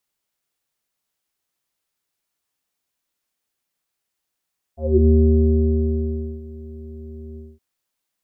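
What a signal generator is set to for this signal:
subtractive voice square D#2 24 dB per octave, low-pass 350 Hz, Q 11, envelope 1 octave, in 0.21 s, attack 297 ms, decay 1.34 s, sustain −22.5 dB, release 0.22 s, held 2.60 s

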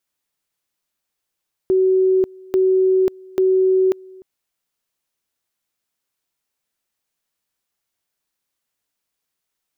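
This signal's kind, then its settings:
tone at two levels in turn 376 Hz −12 dBFS, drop 25.5 dB, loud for 0.54 s, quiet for 0.30 s, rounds 3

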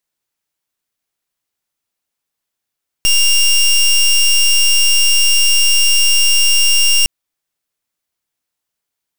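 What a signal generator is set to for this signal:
pulse wave 2,790 Hz, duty 19% −10.5 dBFS 4.01 s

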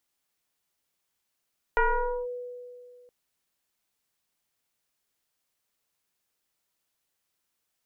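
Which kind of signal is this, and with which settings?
two-operator FM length 1.32 s, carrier 492 Hz, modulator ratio 0.96, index 2.7, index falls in 0.50 s linear, decay 2.29 s, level −18 dB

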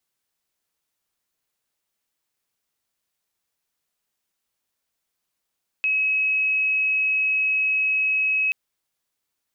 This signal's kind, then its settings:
tone sine 2,560 Hz −18.5 dBFS 2.68 s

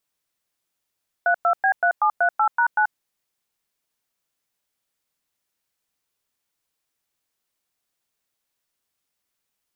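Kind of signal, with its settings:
touch tones "32B3738#9", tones 84 ms, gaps 105 ms, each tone −18 dBFS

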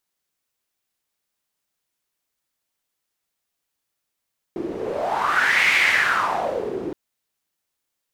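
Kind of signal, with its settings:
wind from filtered noise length 2.37 s, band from 340 Hz, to 2,200 Hz, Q 5.4, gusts 1, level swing 11 dB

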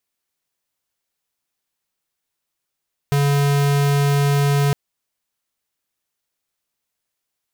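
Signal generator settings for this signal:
tone square 142 Hz −16.5 dBFS 1.61 s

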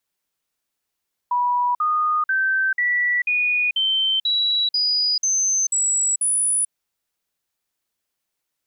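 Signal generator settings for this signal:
stepped sweep 977 Hz up, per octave 3, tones 11, 0.44 s, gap 0.05 s −17 dBFS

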